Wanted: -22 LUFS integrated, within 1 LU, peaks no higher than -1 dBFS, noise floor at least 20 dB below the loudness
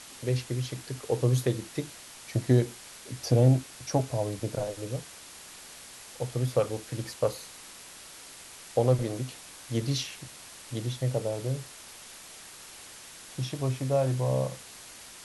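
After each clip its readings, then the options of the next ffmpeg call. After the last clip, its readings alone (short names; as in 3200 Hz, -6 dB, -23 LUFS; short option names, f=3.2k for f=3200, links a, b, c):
noise floor -48 dBFS; noise floor target -50 dBFS; loudness -29.5 LUFS; peak -10.0 dBFS; loudness target -22.0 LUFS
-> -af "afftdn=nr=6:nf=-48"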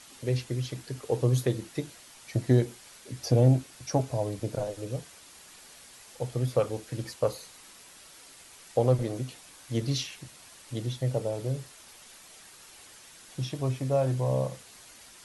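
noise floor -52 dBFS; loudness -30.0 LUFS; peak -10.0 dBFS; loudness target -22.0 LUFS
-> -af "volume=8dB"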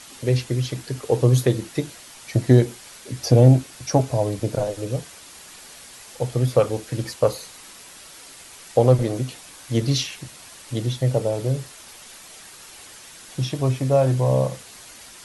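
loudness -22.0 LUFS; peak -2.0 dBFS; noise floor -44 dBFS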